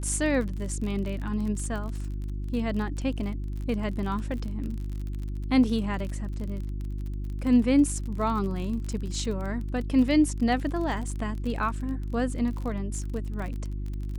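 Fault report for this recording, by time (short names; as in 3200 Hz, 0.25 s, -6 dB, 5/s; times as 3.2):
crackle 36/s -33 dBFS
hum 50 Hz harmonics 7 -32 dBFS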